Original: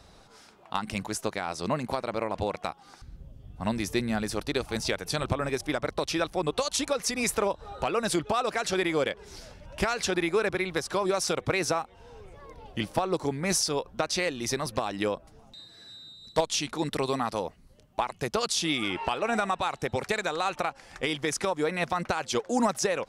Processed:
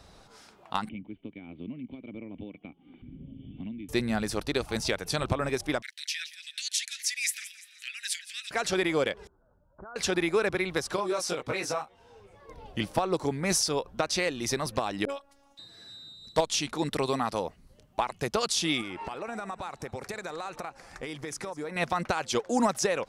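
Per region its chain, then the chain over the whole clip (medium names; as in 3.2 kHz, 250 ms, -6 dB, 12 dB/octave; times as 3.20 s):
0.89–3.89 s: cascade formant filter i + three bands compressed up and down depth 100%
5.82–8.51 s: steep high-pass 1.7 kHz 72 dB/octave + feedback delay 171 ms, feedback 47%, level -15.5 dB
9.27–9.96 s: Chebyshev low-pass 1.5 kHz, order 6 + level held to a coarse grid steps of 22 dB
10.96–12.49 s: bass shelf 120 Hz -9.5 dB + detune thickener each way 13 cents
15.05–15.59 s: bass shelf 440 Hz -10 dB + phase dispersion highs, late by 42 ms, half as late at 530 Hz + robot voice 279 Hz
18.81–21.76 s: peaking EQ 3.1 kHz -6.5 dB 0.6 oct + compression 3:1, threshold -35 dBFS + delay 201 ms -19.5 dB
whole clip: none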